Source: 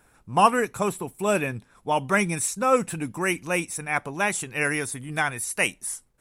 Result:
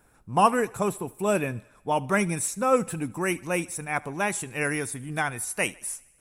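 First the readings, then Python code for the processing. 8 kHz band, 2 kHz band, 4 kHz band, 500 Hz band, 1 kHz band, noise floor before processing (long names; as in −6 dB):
−2.0 dB, −3.5 dB, −4.5 dB, −0.5 dB, −2.0 dB, −61 dBFS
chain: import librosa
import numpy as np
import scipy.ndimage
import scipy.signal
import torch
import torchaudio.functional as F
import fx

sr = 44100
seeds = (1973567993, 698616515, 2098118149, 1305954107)

y = fx.peak_eq(x, sr, hz=3100.0, db=-4.5, octaves=3.0)
y = fx.echo_thinned(y, sr, ms=76, feedback_pct=62, hz=290.0, wet_db=-23.0)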